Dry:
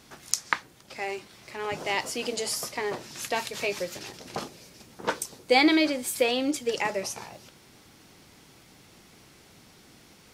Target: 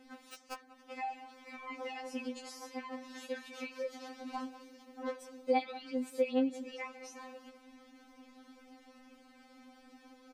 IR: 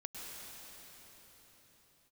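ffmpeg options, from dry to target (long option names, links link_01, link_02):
-filter_complex "[0:a]aeval=exprs='(mod(2*val(0)+1,2)-1)/2':channel_layout=same,acompressor=threshold=-36dB:ratio=2.5,lowpass=frequency=1200:poles=1,asplit=2[link_01][link_02];[link_02]adelay=190,highpass=300,lowpass=3400,asoftclip=type=hard:threshold=-29.5dB,volume=-15dB[link_03];[link_01][link_03]amix=inputs=2:normalize=0,afftfilt=real='re*3.46*eq(mod(b,12),0)':imag='im*3.46*eq(mod(b,12),0)':win_size=2048:overlap=0.75,volume=2dB"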